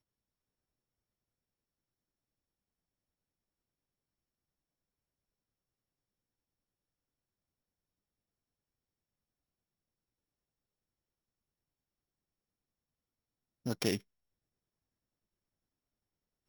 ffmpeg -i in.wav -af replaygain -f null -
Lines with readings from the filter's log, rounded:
track_gain = +64.0 dB
track_peak = 0.120